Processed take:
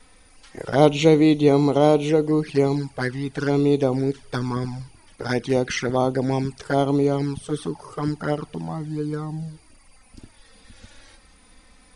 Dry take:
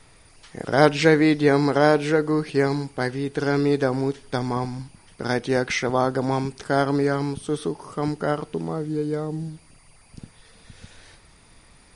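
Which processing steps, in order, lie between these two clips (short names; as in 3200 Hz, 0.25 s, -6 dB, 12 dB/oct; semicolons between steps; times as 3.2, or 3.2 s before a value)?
envelope flanger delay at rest 4.2 ms, full sweep at -17.5 dBFS; gain +2.5 dB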